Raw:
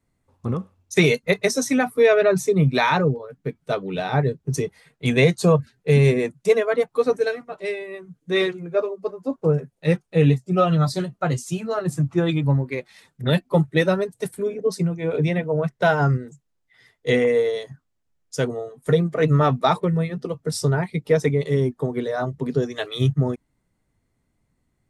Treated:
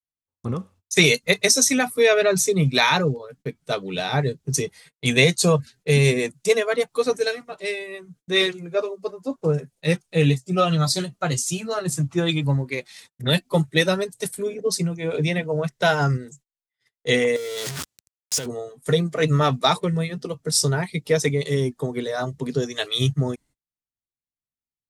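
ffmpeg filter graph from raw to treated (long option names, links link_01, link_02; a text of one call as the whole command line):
ffmpeg -i in.wav -filter_complex "[0:a]asettb=1/sr,asplit=3[link_01][link_02][link_03];[link_01]atrim=end=17.364[link_04];[link_02]atrim=start=17.36:end=18.46,asetpts=PTS-STARTPTS,afade=type=in:duration=0.004:curve=qsin,afade=type=out:start_time=1.096:duration=0.004:curve=qsin,aeval=exprs='val(0)+0.5*0.0562*sgn(val(0))':channel_layout=same,highpass=68,acompressor=threshold=-27dB:ratio=6:attack=3.2:release=140:knee=1:detection=peak[link_05];[link_03]atrim=start=18.456[link_06];[link_04][link_05]acrossfade=duration=0.004:curve1=hsin:curve2=qsin[link_07];[link_07][link_06]acrossfade=duration=0.004:curve1=qsin:curve2=hsin,equalizer=frequency=7200:width=0.42:gain=7.5,agate=range=-32dB:threshold=-48dB:ratio=16:detection=peak,adynamicequalizer=threshold=0.0178:dfrequency=2200:dqfactor=0.7:tfrequency=2200:tqfactor=0.7:attack=5:release=100:ratio=0.375:range=3:mode=boostabove:tftype=highshelf,volume=-2dB" out.wav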